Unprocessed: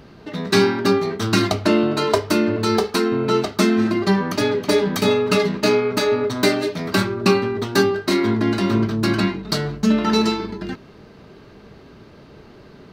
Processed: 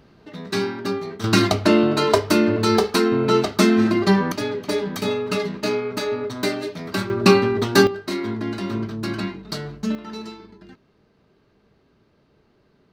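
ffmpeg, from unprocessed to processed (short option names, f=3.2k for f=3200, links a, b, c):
-af "asetnsamples=n=441:p=0,asendcmd='1.24 volume volume 1dB;4.32 volume volume -6dB;7.1 volume volume 2.5dB;7.87 volume volume -7.5dB;9.95 volume volume -16.5dB',volume=-8dB"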